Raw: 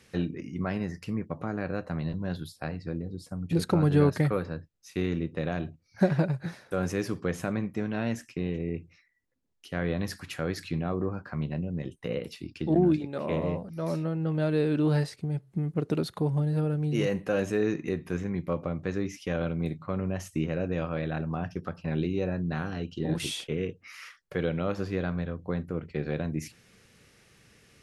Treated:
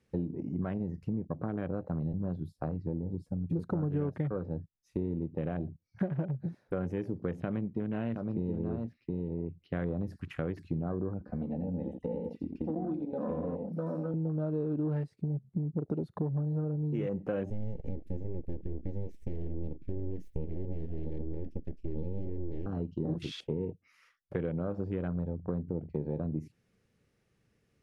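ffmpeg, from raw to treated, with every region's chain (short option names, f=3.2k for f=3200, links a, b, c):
-filter_complex "[0:a]asettb=1/sr,asplit=3[a][b][c];[a]atrim=end=7.404[d];[b]atrim=start=7.4:end=9.9,asetpts=PTS-STARTPTS,afade=t=in:d=0.004:c=qsin,afade=t=out:st=2.496:d=0.004:c=qsin,highshelf=f=5.4k:t=q:w=3:g=-9,aecho=1:1:720:0.562,atrim=end_sample=110250[e];[c]atrim=start=9.896[f];[d][e]acrossfade=d=0.004:c1=hsin:c2=qsin[g];[g][f]acrossfade=d=0.004:c1=qsin:c2=hsin,asettb=1/sr,asplit=3[h][i][j];[h]atrim=end=11.204[k];[i]atrim=start=11.2:end=14.14,asetpts=PTS-STARTPTS,afade=t=in:d=0.004:c=qsin,afade=t=out:st=2.936:d=0.004:c=qsin,aecho=1:1:4:0.74,atrim=end_sample=129654,acrossover=split=430|2500[l][m][n];[l]acompressor=threshold=-38dB:ratio=4[o];[m]acompressor=threshold=-39dB:ratio=4[p];[n]acompressor=threshold=-56dB:ratio=4[q];[o][p][q]amix=inputs=3:normalize=0,aecho=1:1:87:0.501,atrim=end_sample=129654[r];[j]atrim=start=14.136[s];[k][r]acrossfade=d=0.004:c1=hsin:c2=qsin[t];[t][s]acrossfade=d=0.004:c1=qsin:c2=hsin,asettb=1/sr,asplit=3[u][v][w];[u]atrim=end=17.504[x];[v]atrim=start=17.5:end=22.66,asetpts=PTS-STARTPTS,afade=t=in:d=0.004:c=qsin,afade=t=out:st=5.156:d=0.004:c=qsin,aeval=exprs='abs(val(0))':c=same,asuperstop=centerf=970:order=8:qfactor=0.78[y];[w]atrim=start=22.656[z];[x][y]acrossfade=d=0.004:c1=hsin:c2=qsin[aa];[aa][z]acrossfade=d=0.004:c1=qsin:c2=hsin,afwtdn=0.0126,tiltshelf=f=1.1k:g=5.5,acompressor=threshold=-31dB:ratio=4"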